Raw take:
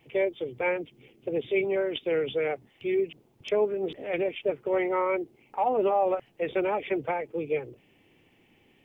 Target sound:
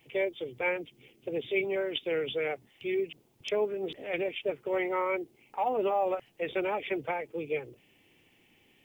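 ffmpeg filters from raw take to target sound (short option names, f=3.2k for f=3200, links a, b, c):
-af "highshelf=f=2.5k:g=10,volume=-4.5dB"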